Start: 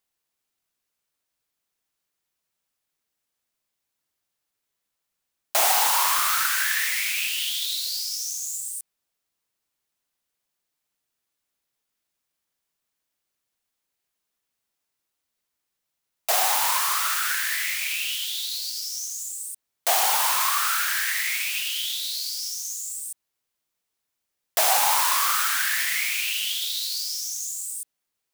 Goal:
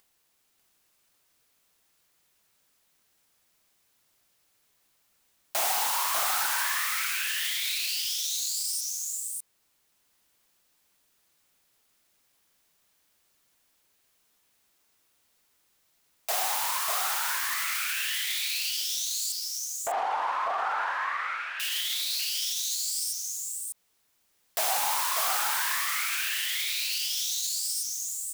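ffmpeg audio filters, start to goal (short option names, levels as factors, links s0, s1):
-filter_complex "[0:a]acompressor=mode=upward:threshold=0.0355:ratio=2.5,asettb=1/sr,asplit=3[s0][s1][s2];[s0]atrim=end=19.324[s3];[s1]atrim=start=19.32:end=21.6,asetpts=PTS-STARTPTS,afade=t=in:d=0.004:c=qsin,afade=t=out:st=2.276:d=0.004:c=qsin,lowpass=1200[s4];[s2]atrim=start=21.596[s5];[s3][s4]acrossfade=d=0.004:c1=hsin:c2=qsin[s6];[s6][s5]acrossfade=d=0.004:c1=qsin:c2=hsin,agate=range=0.1:threshold=0.00398:ratio=16:detection=peak,aecho=1:1:595:0.631,asoftclip=type=hard:threshold=0.188,alimiter=limit=0.075:level=0:latency=1:release=21,volume=1.19"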